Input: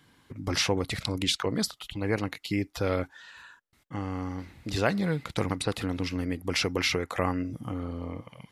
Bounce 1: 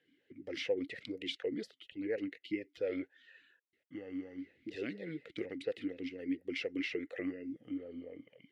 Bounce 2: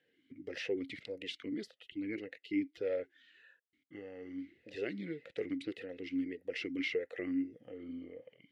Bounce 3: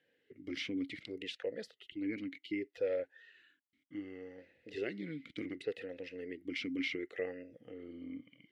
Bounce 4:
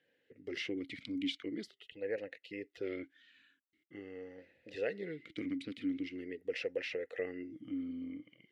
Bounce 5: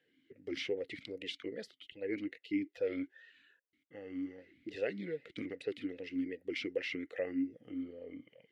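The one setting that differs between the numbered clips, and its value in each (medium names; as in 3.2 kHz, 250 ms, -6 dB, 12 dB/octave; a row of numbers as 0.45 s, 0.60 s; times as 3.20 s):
talking filter, rate: 4.2 Hz, 1.7 Hz, 0.67 Hz, 0.44 Hz, 2.5 Hz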